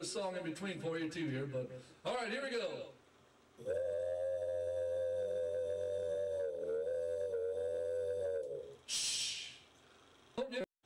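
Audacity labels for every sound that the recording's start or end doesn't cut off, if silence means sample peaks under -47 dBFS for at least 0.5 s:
3.590000	9.570000	sound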